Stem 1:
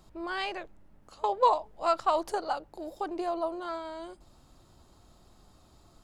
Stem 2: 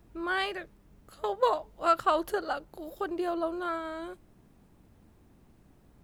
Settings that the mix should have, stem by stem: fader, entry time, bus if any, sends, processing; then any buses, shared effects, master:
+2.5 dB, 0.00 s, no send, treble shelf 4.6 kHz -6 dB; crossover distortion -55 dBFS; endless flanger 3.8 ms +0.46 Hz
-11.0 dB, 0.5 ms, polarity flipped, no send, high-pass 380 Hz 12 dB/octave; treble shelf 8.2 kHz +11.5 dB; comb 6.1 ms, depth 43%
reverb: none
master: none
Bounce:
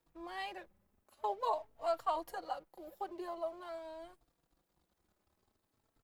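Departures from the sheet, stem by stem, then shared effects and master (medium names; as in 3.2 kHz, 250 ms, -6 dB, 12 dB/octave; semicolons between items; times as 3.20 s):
stem 1 +2.5 dB -> -6.5 dB; stem 2 -11.0 dB -> -19.5 dB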